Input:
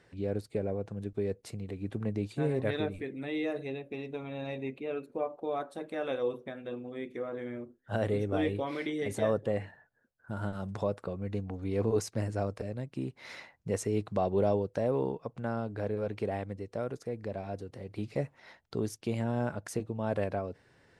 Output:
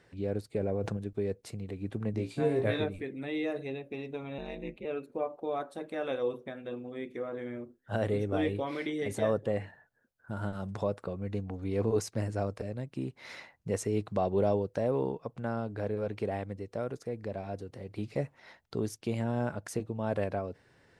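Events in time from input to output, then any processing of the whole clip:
0:00.57–0:00.97: envelope flattener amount 70%
0:02.12–0:02.84: flutter between parallel walls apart 3 metres, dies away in 0.23 s
0:04.38–0:04.85: ring modulation 94 Hz

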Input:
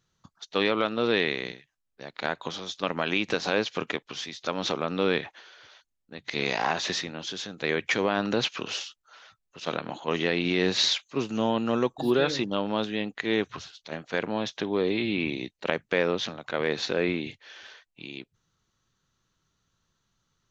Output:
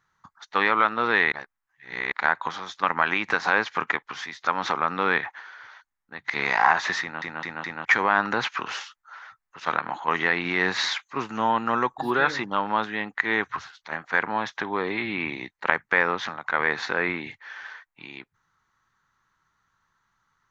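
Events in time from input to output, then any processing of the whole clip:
0:01.32–0:02.12: reverse
0:07.01: stutter in place 0.21 s, 4 plays
whole clip: flat-topped bell 1,300 Hz +14.5 dB; level −4 dB

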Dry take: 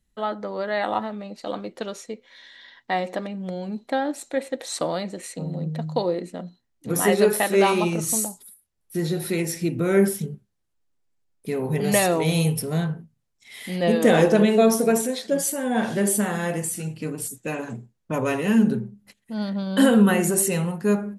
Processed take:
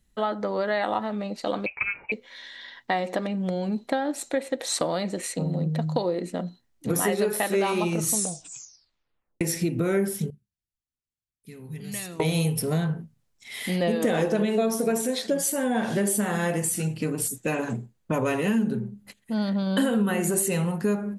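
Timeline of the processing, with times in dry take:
0:01.66–0:02.12: voice inversion scrambler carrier 2,800 Hz
0:08.12: tape stop 1.29 s
0:10.30–0:12.20: guitar amp tone stack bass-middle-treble 6-0-2
0:17.76–0:20.59: notch filter 5,500 Hz
whole clip: downward compressor 4 to 1, threshold −27 dBFS; level +4.5 dB

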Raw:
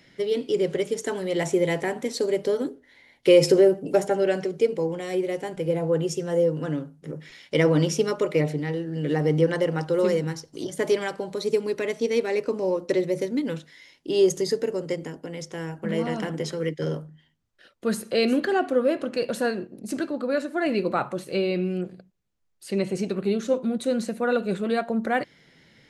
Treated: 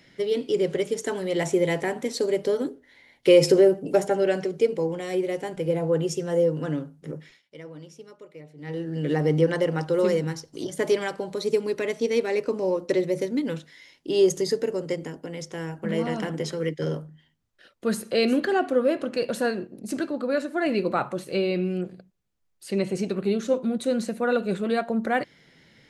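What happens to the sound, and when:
0:07.14–0:08.84: duck −22 dB, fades 0.28 s

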